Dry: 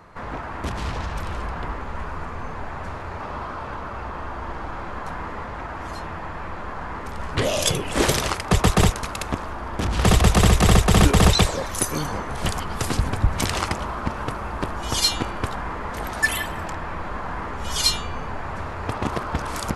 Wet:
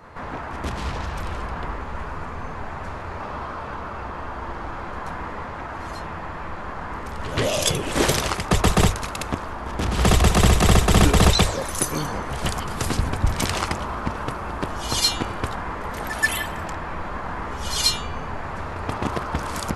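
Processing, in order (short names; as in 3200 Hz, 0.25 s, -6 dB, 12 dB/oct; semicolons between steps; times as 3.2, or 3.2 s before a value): notches 50/100 Hz; pre-echo 0.131 s -13 dB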